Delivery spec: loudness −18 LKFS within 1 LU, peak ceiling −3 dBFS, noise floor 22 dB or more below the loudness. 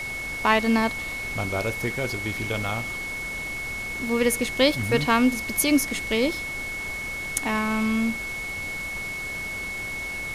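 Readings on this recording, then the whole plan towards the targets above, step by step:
interfering tone 2,200 Hz; level of the tone −30 dBFS; background noise floor −32 dBFS; target noise floor −47 dBFS; integrated loudness −25.0 LKFS; sample peak −5.0 dBFS; target loudness −18.0 LKFS
→ notch filter 2,200 Hz, Q 30
noise reduction from a noise print 15 dB
level +7 dB
brickwall limiter −3 dBFS

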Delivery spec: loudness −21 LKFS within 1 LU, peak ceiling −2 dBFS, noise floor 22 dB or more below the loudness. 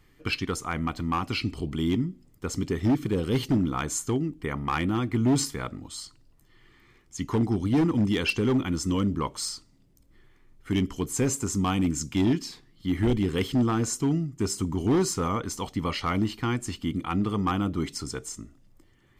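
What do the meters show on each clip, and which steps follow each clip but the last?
share of clipped samples 1.6%; peaks flattened at −18.0 dBFS; integrated loudness −27.5 LKFS; sample peak −18.0 dBFS; target loudness −21.0 LKFS
→ clipped peaks rebuilt −18 dBFS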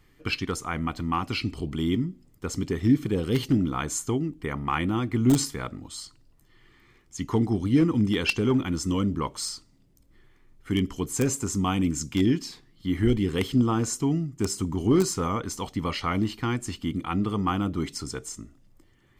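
share of clipped samples 0.0%; integrated loudness −26.5 LKFS; sample peak −9.0 dBFS; target loudness −21.0 LKFS
→ level +5.5 dB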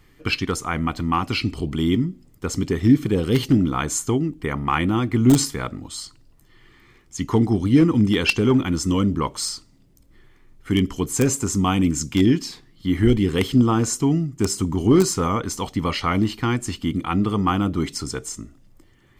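integrated loudness −21.0 LKFS; sample peak −3.5 dBFS; background noise floor −55 dBFS

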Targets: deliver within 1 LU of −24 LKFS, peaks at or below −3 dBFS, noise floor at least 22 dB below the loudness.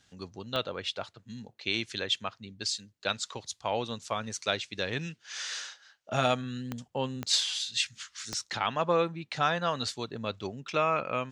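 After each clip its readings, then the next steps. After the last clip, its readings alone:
number of clicks 4; integrated loudness −31.5 LKFS; sample peak −13.0 dBFS; target loudness −24.0 LKFS
→ click removal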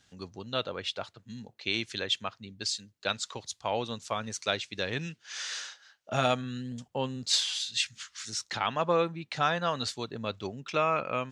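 number of clicks 0; integrated loudness −31.5 LKFS; sample peak −13.0 dBFS; target loudness −24.0 LKFS
→ level +7.5 dB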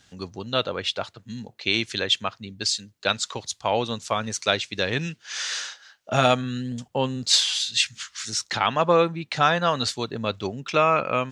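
integrated loudness −24.0 LKFS; sample peak −5.5 dBFS; background noise floor −61 dBFS

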